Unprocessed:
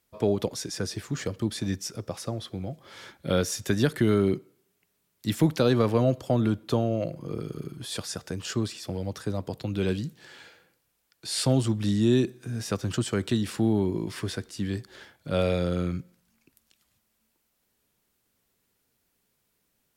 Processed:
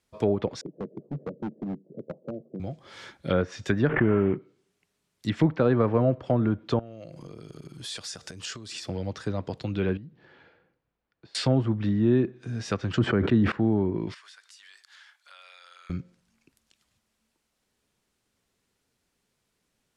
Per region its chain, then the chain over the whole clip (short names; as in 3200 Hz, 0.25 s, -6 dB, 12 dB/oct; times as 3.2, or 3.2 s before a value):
0.61–2.6 Chebyshev band-pass 140–610 Hz, order 4 + overloaded stage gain 28 dB
3.89–4.36 CVSD 16 kbps + backwards sustainer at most 81 dB/s
6.79–8.8 compressor 10:1, threshold -38 dBFS + high shelf 2700 Hz +8.5 dB
9.97–11.35 compressor 4:1, threshold -41 dBFS + tape spacing loss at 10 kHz 41 dB
12.95–13.52 bell 220 Hz +3.5 dB 2.2 oct + sustainer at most 22 dB/s
14.14–15.9 HPF 1100 Hz 24 dB/oct + compressor 5:1, threshold -48 dBFS
whole clip: LPF 8600 Hz 12 dB/oct; treble ducked by the level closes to 1400 Hz, closed at -21 dBFS; dynamic EQ 1900 Hz, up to +5 dB, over -46 dBFS, Q 0.95